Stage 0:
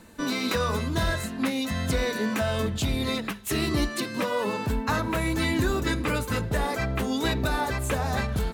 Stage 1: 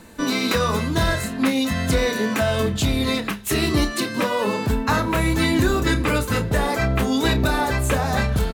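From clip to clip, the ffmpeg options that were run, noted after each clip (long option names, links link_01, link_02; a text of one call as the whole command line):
ffmpeg -i in.wav -filter_complex "[0:a]asplit=2[link_01][link_02];[link_02]adelay=30,volume=-10dB[link_03];[link_01][link_03]amix=inputs=2:normalize=0,volume=5.5dB" out.wav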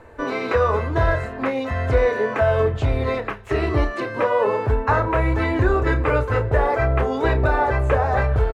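ffmpeg -i in.wav -filter_complex "[0:a]acrossover=split=7200[link_01][link_02];[link_02]acompressor=threshold=-41dB:ratio=4:attack=1:release=60[link_03];[link_01][link_03]amix=inputs=2:normalize=0,firequalizer=gain_entry='entry(120,0);entry(170,-18);entry(420,2);entry(1900,-4);entry(3700,-18);entry(12000,-26)':delay=0.05:min_phase=1,volume=3dB" out.wav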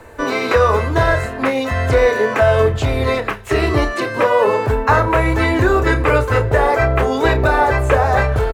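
ffmpeg -i in.wav -filter_complex "[0:a]acrossover=split=110|1300[link_01][link_02][link_03];[link_01]alimiter=limit=-22dB:level=0:latency=1[link_04];[link_04][link_02][link_03]amix=inputs=3:normalize=0,crystalizer=i=2.5:c=0,volume=5dB" out.wav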